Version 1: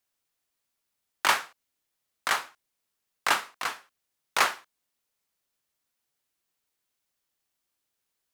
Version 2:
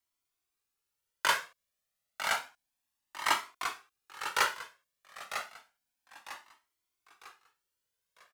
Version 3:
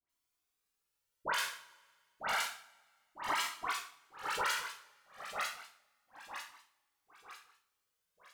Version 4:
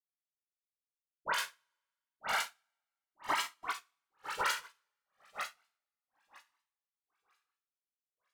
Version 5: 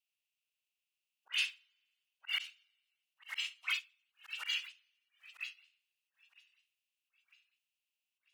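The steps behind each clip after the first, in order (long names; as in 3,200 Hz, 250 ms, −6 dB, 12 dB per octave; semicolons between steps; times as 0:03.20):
on a send: repeating echo 950 ms, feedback 39%, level −9.5 dB; on the sum: flanger whose copies keep moving one way rising 0.3 Hz
all-pass dispersion highs, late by 96 ms, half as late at 1,500 Hz; on a send at −8 dB: convolution reverb, pre-delay 3 ms; on the sum: brickwall limiter −24 dBFS, peak gain reduction 10 dB
expander for the loud parts 2.5 to 1, over −49 dBFS; level +3 dB
spectral magnitudes quantised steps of 30 dB; high-pass with resonance 2,700 Hz, resonance Q 7.6; volume swells 234 ms; level +1.5 dB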